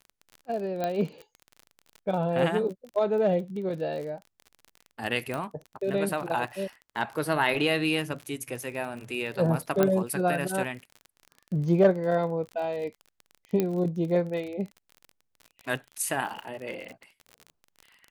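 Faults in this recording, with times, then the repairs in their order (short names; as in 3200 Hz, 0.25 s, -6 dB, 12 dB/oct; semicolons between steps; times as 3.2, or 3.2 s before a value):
crackle 39/s -35 dBFS
0.84 pop -16 dBFS
5.34 pop -19 dBFS
9.83 pop -10 dBFS
13.6 pop -13 dBFS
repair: de-click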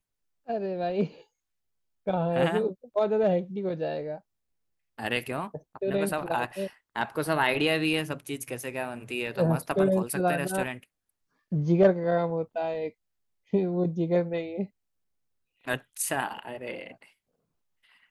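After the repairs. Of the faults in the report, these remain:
none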